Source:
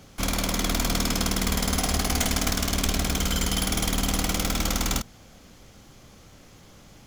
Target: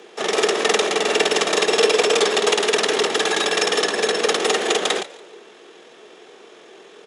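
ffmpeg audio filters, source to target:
-filter_complex "[0:a]bandreject=f=860:w=12,asetrate=22696,aresample=44100,atempo=1.94306,highpass=f=340:t=q:w=3.8,afreqshift=80,asplit=4[s0][s1][s2][s3];[s1]adelay=143,afreqshift=82,volume=0.106[s4];[s2]adelay=286,afreqshift=164,volume=0.0351[s5];[s3]adelay=429,afreqshift=246,volume=0.0115[s6];[s0][s4][s5][s6]amix=inputs=4:normalize=0,volume=2.37"

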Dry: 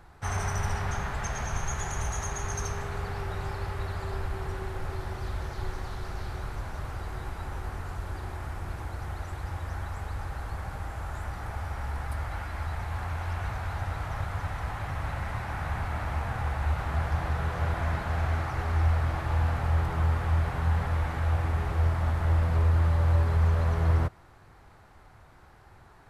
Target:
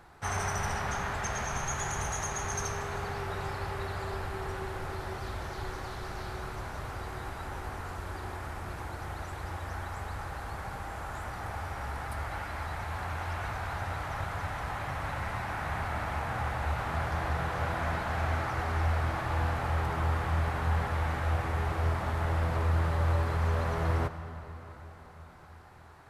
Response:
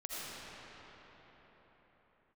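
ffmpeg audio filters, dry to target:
-filter_complex "[0:a]lowshelf=f=110:g=-10.5,asplit=2[s0][s1];[1:a]atrim=start_sample=2205[s2];[s1][s2]afir=irnorm=-1:irlink=0,volume=0.282[s3];[s0][s3]amix=inputs=2:normalize=0"

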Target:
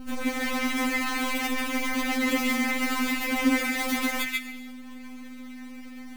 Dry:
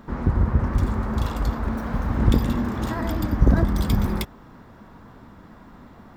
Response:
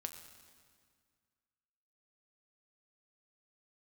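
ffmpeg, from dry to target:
-filter_complex "[0:a]acrusher=bits=5:dc=4:mix=0:aa=0.000001,aeval=exprs='val(0)+0.0251*(sin(2*PI*50*n/s)+sin(2*PI*2*50*n/s)/2+sin(2*PI*3*50*n/s)/3+sin(2*PI*4*50*n/s)/4+sin(2*PI*5*50*n/s)/5)':c=same,asplit=2[s0][s1];[s1]highpass=f=2100:t=q:w=9.6[s2];[1:a]atrim=start_sample=2205,afade=t=out:st=0.41:d=0.01,atrim=end_sample=18522,adelay=139[s3];[s2][s3]afir=irnorm=-1:irlink=0,volume=0.891[s4];[s0][s4]amix=inputs=2:normalize=0,afftfilt=real='re*3.46*eq(mod(b,12),0)':imag='im*3.46*eq(mod(b,12),0)':win_size=2048:overlap=0.75"

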